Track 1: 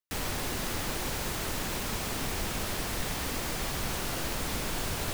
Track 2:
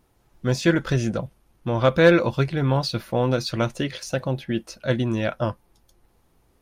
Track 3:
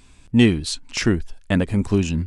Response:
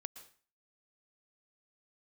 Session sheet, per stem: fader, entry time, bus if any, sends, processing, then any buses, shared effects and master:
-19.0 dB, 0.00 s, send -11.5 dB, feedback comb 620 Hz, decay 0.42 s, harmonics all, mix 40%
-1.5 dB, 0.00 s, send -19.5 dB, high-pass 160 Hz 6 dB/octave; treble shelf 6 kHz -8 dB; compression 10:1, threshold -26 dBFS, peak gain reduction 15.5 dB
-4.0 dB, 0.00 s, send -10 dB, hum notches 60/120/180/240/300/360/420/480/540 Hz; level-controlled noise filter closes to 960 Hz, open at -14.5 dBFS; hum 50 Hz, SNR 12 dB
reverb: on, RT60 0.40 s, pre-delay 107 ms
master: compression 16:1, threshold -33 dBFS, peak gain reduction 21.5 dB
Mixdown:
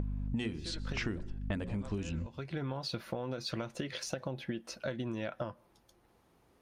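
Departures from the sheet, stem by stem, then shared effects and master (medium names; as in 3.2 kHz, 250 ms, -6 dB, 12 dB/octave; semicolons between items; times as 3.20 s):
stem 1: muted; stem 3 -4.0 dB -> +5.0 dB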